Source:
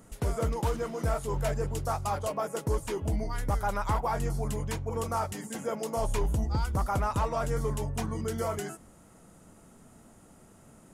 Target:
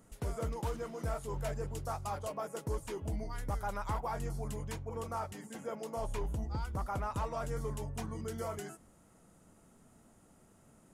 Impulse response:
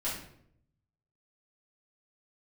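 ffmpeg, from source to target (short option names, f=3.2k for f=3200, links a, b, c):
-filter_complex "[0:a]asettb=1/sr,asplit=3[a][b][c];[a]atrim=end=4.834[d];[b]atrim=start=4.83:end=7.15,asetpts=PTS-STARTPTS,afade=t=in:d=0.004:c=qsin,afade=t=out:st=2.316:d=0.004:c=qsin,bass=f=250:g=-1,treble=f=4k:g=-4[e];[c]atrim=start=7.146[f];[d][e]acrossfade=d=0.004:c1=hsin:c2=qsin[g];[g][f]acrossfade=d=0.004:c1=qsin:c2=hsin,volume=-7.5dB"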